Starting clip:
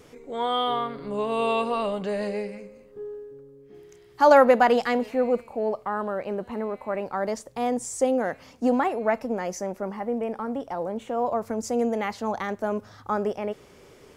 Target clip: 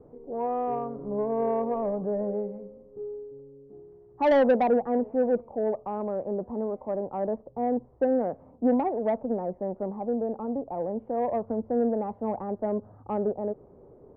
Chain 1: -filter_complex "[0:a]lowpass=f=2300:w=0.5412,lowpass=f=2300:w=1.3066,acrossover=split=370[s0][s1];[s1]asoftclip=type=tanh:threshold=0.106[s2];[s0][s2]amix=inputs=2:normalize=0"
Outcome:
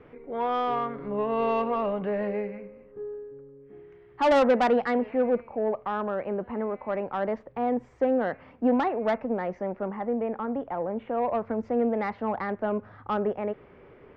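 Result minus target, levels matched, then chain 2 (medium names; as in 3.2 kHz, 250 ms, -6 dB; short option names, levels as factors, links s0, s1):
2 kHz band +6.0 dB
-filter_complex "[0:a]lowpass=f=830:w=0.5412,lowpass=f=830:w=1.3066,acrossover=split=370[s0][s1];[s1]asoftclip=type=tanh:threshold=0.106[s2];[s0][s2]amix=inputs=2:normalize=0"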